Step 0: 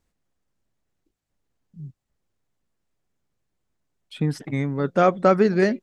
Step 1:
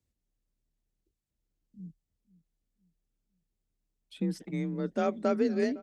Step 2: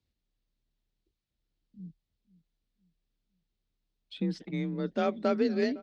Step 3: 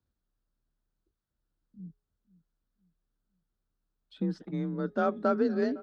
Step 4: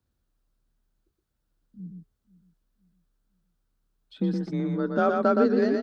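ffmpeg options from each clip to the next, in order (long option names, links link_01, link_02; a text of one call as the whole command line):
ffmpeg -i in.wav -filter_complex "[0:a]equalizer=frequency=1100:width_type=o:width=2.2:gain=-9.5,afreqshift=34,asplit=2[link_01][link_02];[link_02]adelay=508,lowpass=frequency=1900:poles=1,volume=-20dB,asplit=2[link_03][link_04];[link_04]adelay=508,lowpass=frequency=1900:poles=1,volume=0.41,asplit=2[link_05][link_06];[link_06]adelay=508,lowpass=frequency=1900:poles=1,volume=0.41[link_07];[link_01][link_03][link_05][link_07]amix=inputs=4:normalize=0,volume=-6.5dB" out.wav
ffmpeg -i in.wav -af "lowpass=frequency=4100:width_type=q:width=2" out.wav
ffmpeg -i in.wav -af "highshelf=frequency=1800:width_type=q:width=3:gain=-6.5,bandreject=frequency=417.7:width_type=h:width=4,bandreject=frequency=835.4:width_type=h:width=4,bandreject=frequency=1253.1:width_type=h:width=4,bandreject=frequency=1670.8:width_type=h:width=4,bandreject=frequency=2088.5:width_type=h:width=4,bandreject=frequency=2506.2:width_type=h:width=4,bandreject=frequency=2923.9:width_type=h:width=4,bandreject=frequency=3341.6:width_type=h:width=4,bandreject=frequency=3759.3:width_type=h:width=4" out.wav
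ffmpeg -i in.wav -af "aecho=1:1:119:0.631,volume=4.5dB" out.wav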